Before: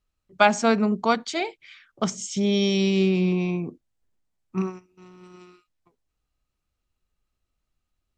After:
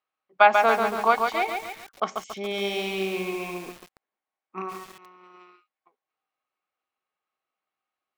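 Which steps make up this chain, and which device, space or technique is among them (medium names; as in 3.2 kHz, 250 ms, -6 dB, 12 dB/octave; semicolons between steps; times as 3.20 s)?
high-pass 49 Hz; tin-can telephone (band-pass 570–2500 Hz; small resonant body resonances 780/1100/2200 Hz, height 10 dB, ringing for 90 ms); bit-crushed delay 140 ms, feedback 55%, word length 7-bit, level -4.5 dB; trim +2 dB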